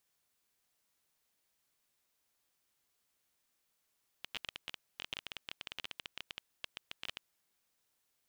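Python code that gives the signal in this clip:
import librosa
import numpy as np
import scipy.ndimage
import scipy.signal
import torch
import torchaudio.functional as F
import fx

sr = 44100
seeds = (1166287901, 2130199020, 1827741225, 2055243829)

y = fx.geiger_clicks(sr, seeds[0], length_s=3.08, per_s=16.0, level_db=-23.5)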